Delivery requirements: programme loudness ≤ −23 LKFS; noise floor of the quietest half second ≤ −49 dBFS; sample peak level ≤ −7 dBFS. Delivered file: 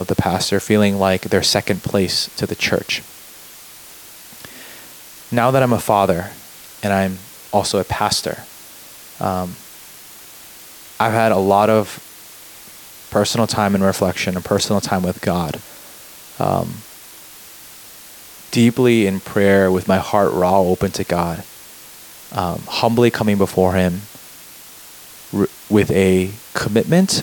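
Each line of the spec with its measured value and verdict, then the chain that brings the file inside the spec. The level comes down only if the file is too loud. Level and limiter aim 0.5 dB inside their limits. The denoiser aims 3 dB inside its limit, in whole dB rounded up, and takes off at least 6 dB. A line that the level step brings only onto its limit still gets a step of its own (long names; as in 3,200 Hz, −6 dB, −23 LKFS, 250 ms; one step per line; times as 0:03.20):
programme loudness −17.5 LKFS: out of spec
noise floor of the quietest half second −40 dBFS: out of spec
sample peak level −1.5 dBFS: out of spec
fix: broadband denoise 6 dB, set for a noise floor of −40 dBFS
level −6 dB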